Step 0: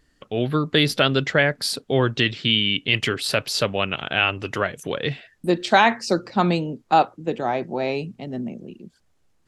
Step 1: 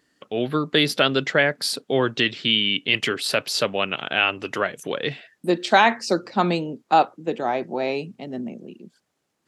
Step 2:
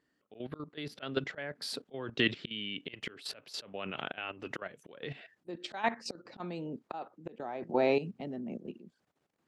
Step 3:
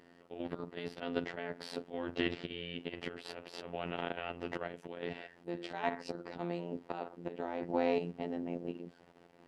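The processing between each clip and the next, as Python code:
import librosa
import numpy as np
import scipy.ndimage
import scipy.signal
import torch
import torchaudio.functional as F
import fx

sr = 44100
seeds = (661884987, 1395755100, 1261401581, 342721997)

y1 = scipy.signal.sosfilt(scipy.signal.butter(2, 190.0, 'highpass', fs=sr, output='sos'), x)
y2 = fx.high_shelf(y1, sr, hz=3900.0, db=-11.5)
y2 = fx.auto_swell(y2, sr, attack_ms=395.0)
y2 = fx.level_steps(y2, sr, step_db=13)
y3 = fx.bin_compress(y2, sr, power=0.6)
y3 = fx.robotise(y3, sr, hz=86.5)
y3 = fx.high_shelf(y3, sr, hz=2300.0, db=-10.0)
y3 = F.gain(torch.from_numpy(y3), -2.0).numpy()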